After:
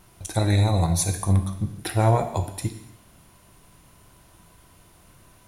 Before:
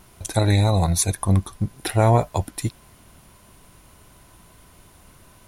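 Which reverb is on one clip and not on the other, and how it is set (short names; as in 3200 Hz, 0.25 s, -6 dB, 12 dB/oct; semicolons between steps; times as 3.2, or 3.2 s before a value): non-linear reverb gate 0.32 s falling, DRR 6 dB; gain -4 dB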